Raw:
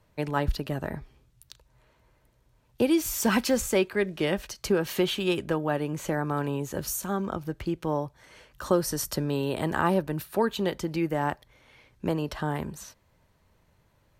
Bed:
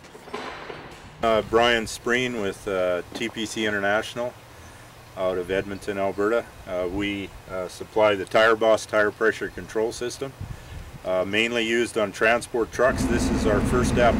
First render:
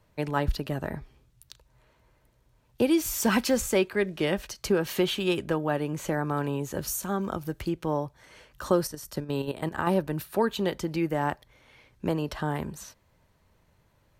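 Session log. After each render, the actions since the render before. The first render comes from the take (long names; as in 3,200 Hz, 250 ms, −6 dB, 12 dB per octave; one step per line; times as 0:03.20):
0:07.20–0:07.68: high-shelf EQ 8,300 Hz → 5,500 Hz +9.5 dB
0:08.87–0:09.87: output level in coarse steps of 14 dB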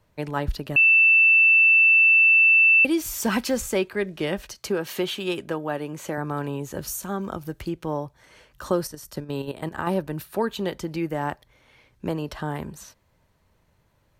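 0:00.76–0:02.85: beep over 2,660 Hz −12.5 dBFS
0:04.58–0:06.18: high-pass filter 200 Hz 6 dB per octave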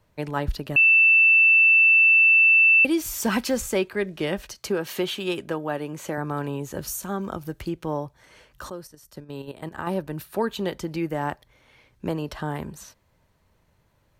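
0:08.70–0:10.48: fade in, from −14.5 dB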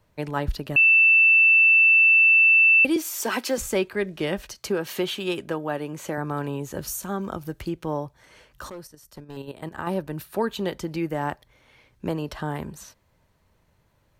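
0:02.96–0:03.58: Butterworth high-pass 270 Hz
0:08.67–0:09.37: gain into a clipping stage and back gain 33 dB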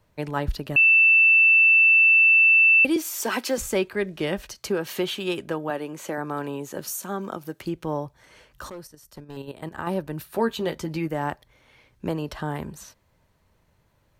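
0:05.70–0:07.65: high-pass filter 200 Hz
0:10.32–0:11.08: double-tracking delay 13 ms −7 dB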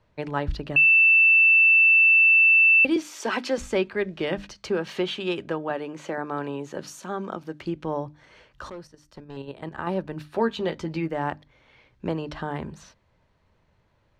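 low-pass filter 4,500 Hz 12 dB per octave
mains-hum notches 50/100/150/200/250/300 Hz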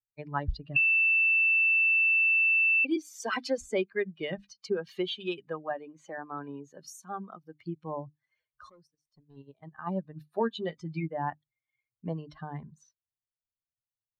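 spectral dynamics exaggerated over time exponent 2
downward compressor, threshold −23 dBFS, peak gain reduction 7.5 dB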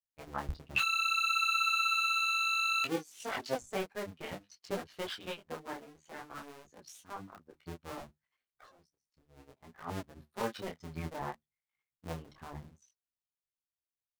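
sub-harmonics by changed cycles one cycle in 2, muted
micro pitch shift up and down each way 21 cents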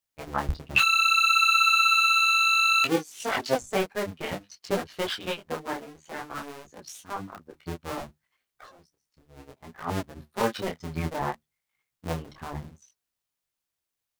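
level +9.5 dB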